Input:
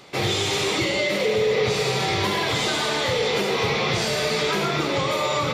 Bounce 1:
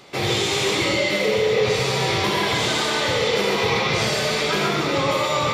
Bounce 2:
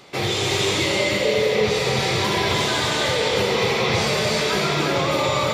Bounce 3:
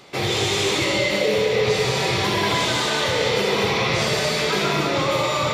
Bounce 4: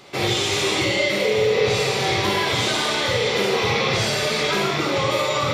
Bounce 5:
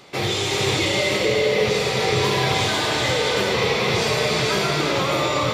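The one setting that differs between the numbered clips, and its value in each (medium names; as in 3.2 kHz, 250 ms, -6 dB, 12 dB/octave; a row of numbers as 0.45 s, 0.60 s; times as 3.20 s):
gated-style reverb, gate: 160 ms, 360 ms, 240 ms, 80 ms, 530 ms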